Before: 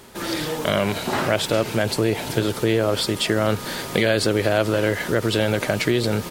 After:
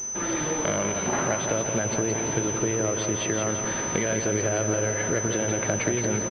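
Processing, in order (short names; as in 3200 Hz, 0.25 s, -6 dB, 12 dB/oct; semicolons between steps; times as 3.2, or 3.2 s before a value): compressor, threshold -21 dBFS, peak gain reduction 8 dB; feedback echo 0.171 s, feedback 58%, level -6 dB; pulse-width modulation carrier 6100 Hz; gain -1.5 dB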